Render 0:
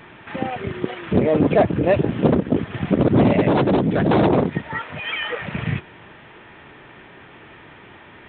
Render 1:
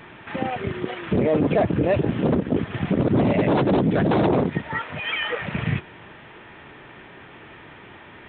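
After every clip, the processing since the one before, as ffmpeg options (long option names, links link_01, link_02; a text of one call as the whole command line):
ffmpeg -i in.wav -af "alimiter=limit=-11.5dB:level=0:latency=1:release=28" out.wav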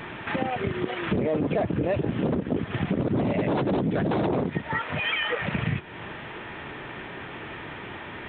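ffmpeg -i in.wav -af "acompressor=threshold=-32dB:ratio=3,volume=6dB" out.wav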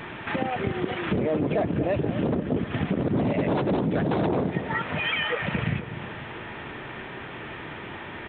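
ffmpeg -i in.wav -filter_complex "[0:a]asplit=2[link_01][link_02];[link_02]adelay=245,lowpass=frequency=1400:poles=1,volume=-10dB,asplit=2[link_03][link_04];[link_04]adelay=245,lowpass=frequency=1400:poles=1,volume=0.53,asplit=2[link_05][link_06];[link_06]adelay=245,lowpass=frequency=1400:poles=1,volume=0.53,asplit=2[link_07][link_08];[link_08]adelay=245,lowpass=frequency=1400:poles=1,volume=0.53,asplit=2[link_09][link_10];[link_10]adelay=245,lowpass=frequency=1400:poles=1,volume=0.53,asplit=2[link_11][link_12];[link_12]adelay=245,lowpass=frequency=1400:poles=1,volume=0.53[link_13];[link_01][link_03][link_05][link_07][link_09][link_11][link_13]amix=inputs=7:normalize=0" out.wav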